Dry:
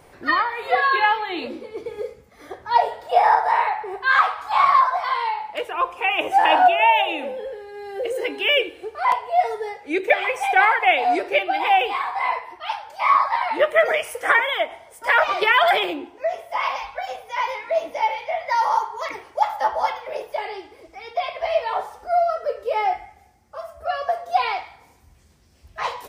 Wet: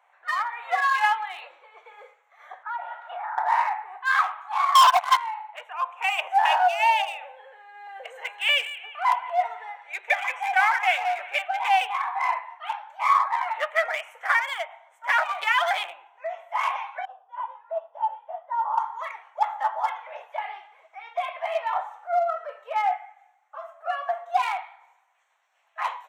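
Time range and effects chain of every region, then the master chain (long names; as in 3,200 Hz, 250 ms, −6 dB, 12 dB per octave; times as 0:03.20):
0:02.63–0:03.38: band-pass filter 680–3,500 Hz + parametric band 1,400 Hz +14.5 dB 0.22 octaves + downward compressor 8 to 1, threshold −27 dBFS
0:04.75–0:05.17: noise gate −22 dBFS, range −17 dB + parametric band 750 Hz +3 dB 1.2 octaves + leveller curve on the samples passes 5
0:07.87–0:11.48: high-pass filter 390 Hz 24 dB per octave + delay with a high-pass on its return 175 ms, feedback 49%, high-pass 1,500 Hz, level −10 dB
0:17.05–0:18.78: moving average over 20 samples + expander for the loud parts, over −36 dBFS
whole clip: adaptive Wiener filter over 9 samples; Butterworth high-pass 720 Hz 36 dB per octave; automatic gain control gain up to 7.5 dB; level −7.5 dB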